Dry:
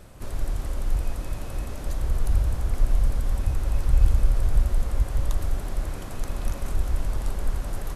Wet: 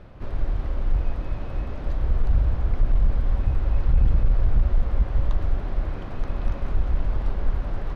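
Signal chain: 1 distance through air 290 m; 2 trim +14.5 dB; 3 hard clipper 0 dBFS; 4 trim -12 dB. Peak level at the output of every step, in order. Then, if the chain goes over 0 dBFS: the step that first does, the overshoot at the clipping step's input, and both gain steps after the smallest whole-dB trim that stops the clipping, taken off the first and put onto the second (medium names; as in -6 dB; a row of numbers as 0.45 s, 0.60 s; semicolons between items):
-5.5 dBFS, +9.0 dBFS, 0.0 dBFS, -12.0 dBFS; step 2, 9.0 dB; step 2 +5.5 dB, step 4 -3 dB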